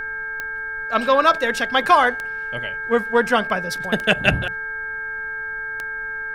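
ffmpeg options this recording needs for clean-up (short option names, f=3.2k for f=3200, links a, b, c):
-af "adeclick=t=4,bandreject=f=439.8:t=h:w=4,bandreject=f=879.6:t=h:w=4,bandreject=f=1.3194k:t=h:w=4,bandreject=f=1.7592k:t=h:w=4,bandreject=f=2.199k:t=h:w=4,bandreject=f=1.6k:w=30,agate=range=-21dB:threshold=-21dB"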